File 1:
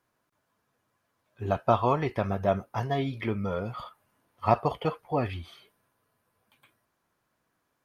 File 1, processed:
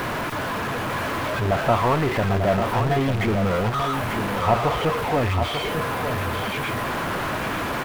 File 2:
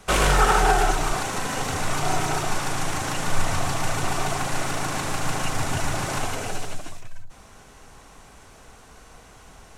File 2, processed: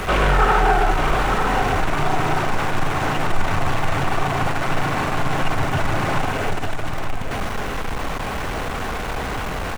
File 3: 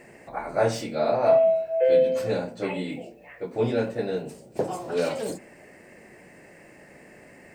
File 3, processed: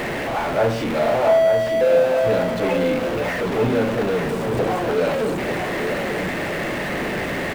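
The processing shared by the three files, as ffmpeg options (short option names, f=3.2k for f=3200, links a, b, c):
-filter_complex "[0:a]aeval=exprs='val(0)+0.5*0.112*sgn(val(0))':c=same,acrossover=split=3200[a][b];[b]acompressor=threshold=-42dB:ratio=4:attack=1:release=60[c];[a][c]amix=inputs=2:normalize=0,aecho=1:1:895:0.447"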